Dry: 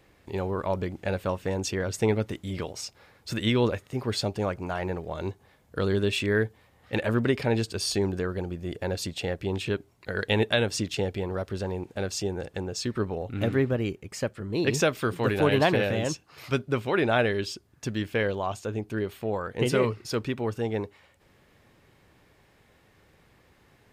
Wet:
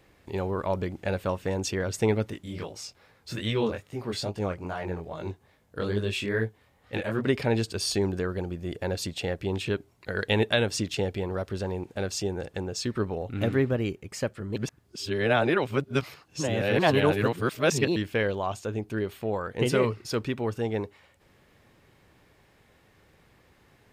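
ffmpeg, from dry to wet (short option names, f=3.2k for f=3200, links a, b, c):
-filter_complex "[0:a]asettb=1/sr,asplit=3[a][b][c];[a]atrim=end=2.304[d];[b]atrim=start=2.3:end=7.27,asetpts=PTS-STARTPTS,afade=t=in:d=0.004:c=qsin,afade=t=out:st=4.966:d=0.004:c=qsin,flanger=delay=18:depth=6.5:speed=2.4[e];[c]atrim=start=7.266[f];[d][e]acrossfade=d=0.004:c1=hsin:c2=qsin[g];[g][f]acrossfade=d=0.004:c1=qsin:c2=hsin,asplit=3[h][i][j];[h]atrim=end=14.562[k];[i]atrim=start=14.558:end=17.962,asetpts=PTS-STARTPTS,areverse[l];[j]atrim=start=17.958[m];[k][l]acrossfade=d=0.004:c1=hsin:c2=hsin[n];[n][m]acrossfade=d=0.004:c1=hsin:c2=hsin"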